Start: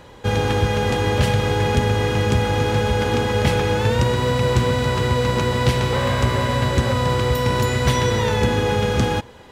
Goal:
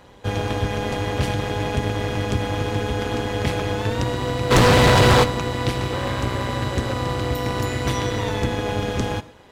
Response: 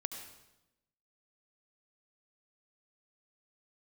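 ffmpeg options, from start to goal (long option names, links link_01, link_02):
-filter_complex "[0:a]tremolo=f=200:d=0.75,asplit=3[link_01][link_02][link_03];[link_01]afade=type=out:start_time=4.5:duration=0.02[link_04];[link_02]aeval=exprs='0.398*sin(PI/2*3.98*val(0)/0.398)':channel_layout=same,afade=type=in:start_time=4.5:duration=0.02,afade=type=out:start_time=5.23:duration=0.02[link_05];[link_03]afade=type=in:start_time=5.23:duration=0.02[link_06];[link_04][link_05][link_06]amix=inputs=3:normalize=0,asplit=2[link_07][link_08];[1:a]atrim=start_sample=2205,atrim=end_sample=6174[link_09];[link_08][link_09]afir=irnorm=-1:irlink=0,volume=-7.5dB[link_10];[link_07][link_10]amix=inputs=2:normalize=0,volume=-4dB"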